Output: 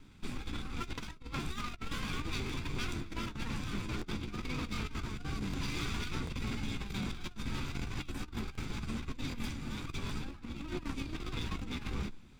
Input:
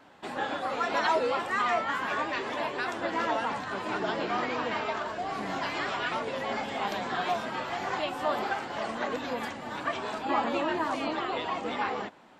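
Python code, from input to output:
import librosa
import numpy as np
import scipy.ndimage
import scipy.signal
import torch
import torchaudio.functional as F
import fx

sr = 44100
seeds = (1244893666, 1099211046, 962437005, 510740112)

y = fx.lower_of_two(x, sr, delay_ms=0.85)
y = fx.tone_stack(y, sr, knobs='10-0-1')
y = fx.over_compress(y, sr, threshold_db=-54.0, ratio=-0.5)
y = fx.doubler(y, sr, ms=14.0, db=-14.0)
y = fx.buffer_crackle(y, sr, first_s=0.93, period_s=0.76, block=1024, kind='repeat')
y = y * librosa.db_to_amplitude(17.0)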